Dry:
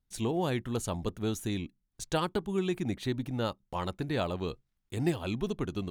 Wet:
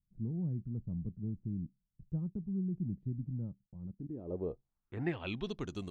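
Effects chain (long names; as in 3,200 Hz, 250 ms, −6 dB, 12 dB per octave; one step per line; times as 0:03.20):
0:03.61–0:04.31: output level in coarse steps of 19 dB
low-pass filter sweep 170 Hz → 8,400 Hz, 0:03.85–0:05.83
level −6.5 dB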